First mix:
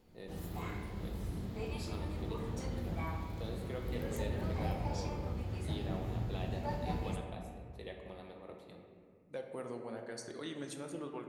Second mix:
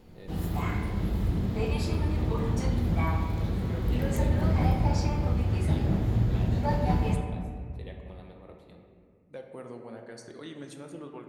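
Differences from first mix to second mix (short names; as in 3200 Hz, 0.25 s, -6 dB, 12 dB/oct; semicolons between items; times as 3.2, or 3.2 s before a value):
background +10.0 dB; master: add tone controls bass +3 dB, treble -3 dB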